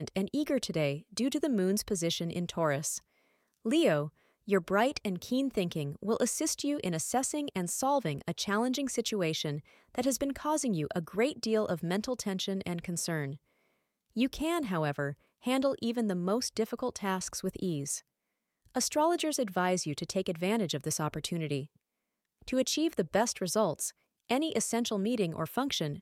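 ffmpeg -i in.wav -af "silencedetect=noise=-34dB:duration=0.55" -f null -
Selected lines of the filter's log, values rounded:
silence_start: 2.98
silence_end: 3.66 | silence_duration: 0.68
silence_start: 13.32
silence_end: 14.17 | silence_duration: 0.85
silence_start: 17.98
silence_end: 18.76 | silence_duration: 0.78
silence_start: 21.62
silence_end: 22.48 | silence_duration: 0.86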